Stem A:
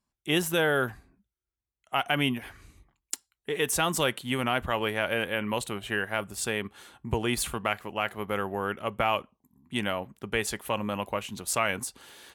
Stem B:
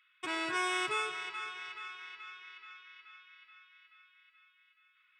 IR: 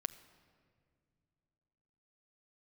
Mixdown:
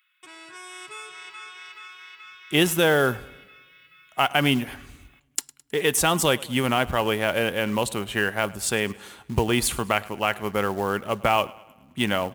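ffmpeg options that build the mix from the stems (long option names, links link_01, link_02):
-filter_complex "[0:a]adynamicequalizer=threshold=0.01:dfrequency=1800:dqfactor=0.94:tfrequency=1800:tqfactor=0.94:attack=5:release=100:ratio=0.375:range=2:mode=cutabove:tftype=bell,acrusher=bits=5:mode=log:mix=0:aa=0.000001,adelay=2250,volume=-3.5dB,asplit=3[link_01][link_02][link_03];[link_02]volume=-22dB[link_04];[link_03]volume=-21.5dB[link_05];[1:a]aemphasis=mode=production:type=50fm,acompressor=threshold=-59dB:ratio=1.5,volume=-1.5dB[link_06];[2:a]atrim=start_sample=2205[link_07];[link_04][link_07]afir=irnorm=-1:irlink=0[link_08];[link_05]aecho=0:1:106|212|318|424|530|636|742|848:1|0.52|0.27|0.141|0.0731|0.038|0.0198|0.0103[link_09];[link_01][link_06][link_08][link_09]amix=inputs=4:normalize=0,dynaudnorm=framelen=180:gausssize=11:maxgain=9dB"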